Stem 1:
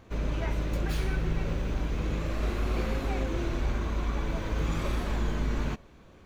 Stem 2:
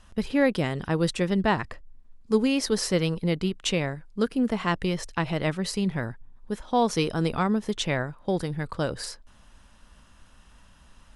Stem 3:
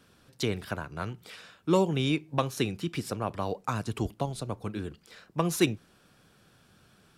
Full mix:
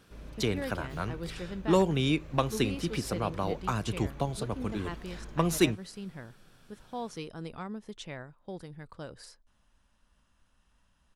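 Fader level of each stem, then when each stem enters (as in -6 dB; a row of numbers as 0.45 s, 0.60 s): -16.0 dB, -15.0 dB, 0.0 dB; 0.00 s, 0.20 s, 0.00 s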